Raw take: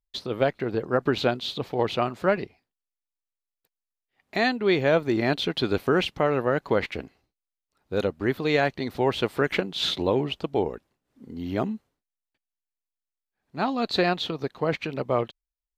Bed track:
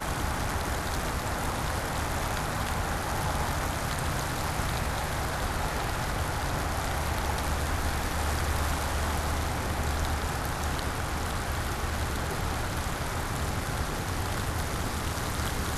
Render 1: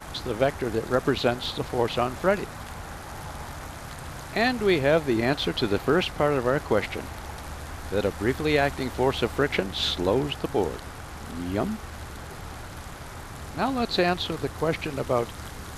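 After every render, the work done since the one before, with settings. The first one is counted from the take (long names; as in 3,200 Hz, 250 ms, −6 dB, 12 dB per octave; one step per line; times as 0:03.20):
mix in bed track −8 dB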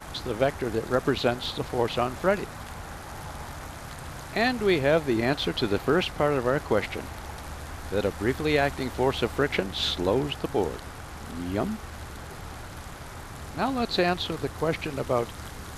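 level −1 dB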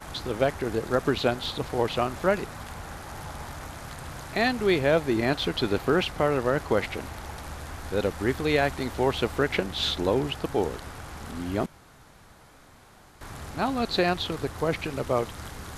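0:11.66–0:13.21: fill with room tone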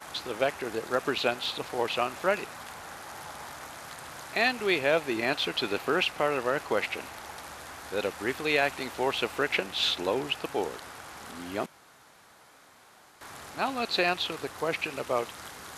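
high-pass filter 580 Hz 6 dB per octave
dynamic equaliser 2,600 Hz, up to +7 dB, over −51 dBFS, Q 5.4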